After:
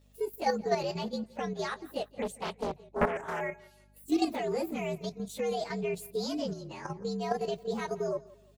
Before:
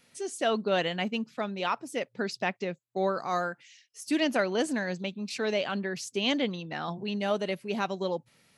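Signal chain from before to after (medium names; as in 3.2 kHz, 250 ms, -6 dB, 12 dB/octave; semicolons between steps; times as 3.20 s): frequency axis rescaled in octaves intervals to 118%; hum 50 Hz, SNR 24 dB; level held to a coarse grid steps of 9 dB; peaking EQ 460 Hz +7.5 dB 1.1 oct; feedback delay 171 ms, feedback 35%, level -21.5 dB; 2.22–3.41 s: loudspeaker Doppler distortion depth 0.99 ms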